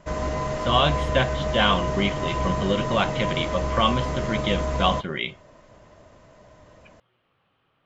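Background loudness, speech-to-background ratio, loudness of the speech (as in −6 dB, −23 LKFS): −27.5 LKFS, 2.5 dB, −25.0 LKFS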